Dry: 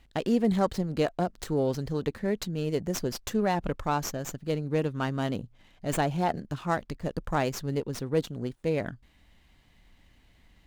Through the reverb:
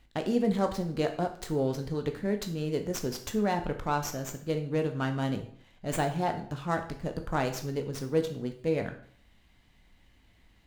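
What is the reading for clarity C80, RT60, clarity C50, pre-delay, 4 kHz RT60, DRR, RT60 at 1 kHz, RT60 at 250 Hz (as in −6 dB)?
14.0 dB, 0.55 s, 10.5 dB, 13 ms, 0.50 s, 5.5 dB, 0.55 s, 0.55 s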